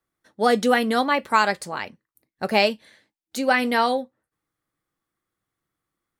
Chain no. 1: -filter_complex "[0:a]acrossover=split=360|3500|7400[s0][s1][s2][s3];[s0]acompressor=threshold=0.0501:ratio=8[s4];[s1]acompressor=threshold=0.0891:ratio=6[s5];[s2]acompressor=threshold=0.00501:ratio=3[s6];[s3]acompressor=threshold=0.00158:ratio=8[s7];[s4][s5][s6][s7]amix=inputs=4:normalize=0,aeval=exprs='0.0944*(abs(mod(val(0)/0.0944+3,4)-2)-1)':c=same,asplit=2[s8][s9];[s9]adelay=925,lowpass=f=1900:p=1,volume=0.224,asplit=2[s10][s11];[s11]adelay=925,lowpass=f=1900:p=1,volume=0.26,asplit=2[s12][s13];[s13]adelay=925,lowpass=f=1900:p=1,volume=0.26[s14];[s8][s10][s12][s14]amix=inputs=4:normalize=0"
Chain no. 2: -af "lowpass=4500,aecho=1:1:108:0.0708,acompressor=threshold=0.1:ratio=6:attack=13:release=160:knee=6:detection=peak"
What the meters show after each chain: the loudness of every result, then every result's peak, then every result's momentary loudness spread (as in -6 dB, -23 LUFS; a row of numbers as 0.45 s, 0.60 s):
-29.5 LUFS, -26.0 LUFS; -19.0 dBFS, -10.5 dBFS; 16 LU, 12 LU